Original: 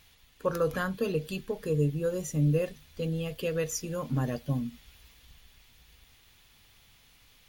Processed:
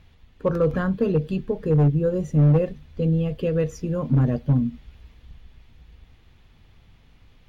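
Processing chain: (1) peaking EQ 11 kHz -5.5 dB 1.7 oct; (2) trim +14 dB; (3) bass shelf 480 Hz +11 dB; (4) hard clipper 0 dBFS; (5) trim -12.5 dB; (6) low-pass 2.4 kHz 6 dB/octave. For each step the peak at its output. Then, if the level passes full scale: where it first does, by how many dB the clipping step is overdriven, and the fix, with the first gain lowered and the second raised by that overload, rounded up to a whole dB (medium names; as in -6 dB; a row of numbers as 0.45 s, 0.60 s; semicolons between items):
-15.5 dBFS, -1.5 dBFS, +7.0 dBFS, 0.0 dBFS, -12.5 dBFS, -12.5 dBFS; step 3, 7.0 dB; step 2 +7 dB, step 5 -5.5 dB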